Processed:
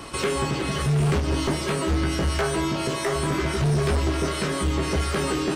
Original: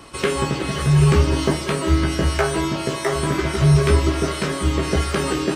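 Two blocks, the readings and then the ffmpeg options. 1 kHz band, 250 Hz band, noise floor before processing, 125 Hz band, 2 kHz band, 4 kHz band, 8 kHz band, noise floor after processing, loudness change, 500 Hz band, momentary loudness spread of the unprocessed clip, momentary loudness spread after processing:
−3.0 dB, −4.5 dB, −29 dBFS, −6.0 dB, −3.5 dB, −3.0 dB, −2.5 dB, −29 dBFS, −4.5 dB, −4.0 dB, 7 LU, 3 LU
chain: -af "aeval=exprs='0.631*(cos(1*acos(clip(val(0)/0.631,-1,1)))-cos(1*PI/2))+0.251*(cos(5*acos(clip(val(0)/0.631,-1,1)))-cos(5*PI/2))':channel_layout=same,alimiter=limit=-13dB:level=0:latency=1:release=361,volume=-5dB"

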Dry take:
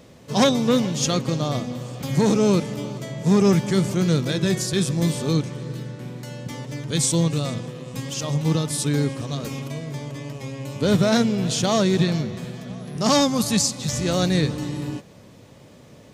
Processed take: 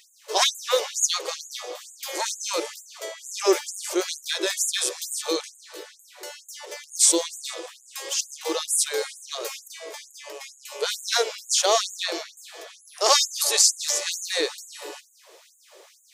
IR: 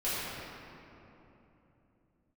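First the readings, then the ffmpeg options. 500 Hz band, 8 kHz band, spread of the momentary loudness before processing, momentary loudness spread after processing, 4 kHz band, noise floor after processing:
−4.0 dB, +5.5 dB, 15 LU, 21 LU, +3.0 dB, −56 dBFS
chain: -af "bass=frequency=250:gain=13,treble=frequency=4000:gain=4,afftfilt=real='re*gte(b*sr/1024,320*pow(6600/320,0.5+0.5*sin(2*PI*2.2*pts/sr)))':imag='im*gte(b*sr/1024,320*pow(6600/320,0.5+0.5*sin(2*PI*2.2*pts/sr)))':win_size=1024:overlap=0.75,volume=2dB"

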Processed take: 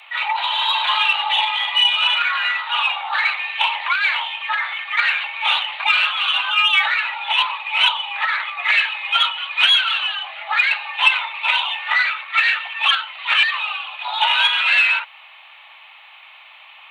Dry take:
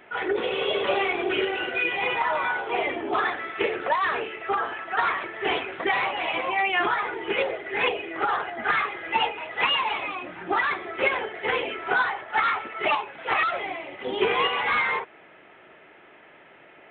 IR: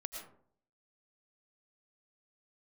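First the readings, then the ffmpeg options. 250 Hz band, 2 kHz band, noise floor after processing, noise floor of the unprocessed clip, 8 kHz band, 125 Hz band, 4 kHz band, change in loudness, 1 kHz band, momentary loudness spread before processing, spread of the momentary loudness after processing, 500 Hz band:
below −40 dB, +8.5 dB, −44 dBFS, −52 dBFS, can't be measured, below −40 dB, +15.0 dB, +8.0 dB, +3.0 dB, 5 LU, 7 LU, −16.5 dB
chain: -af "afreqshift=480,aexciter=amount=2.4:drive=6.4:freq=2300,volume=3dB"

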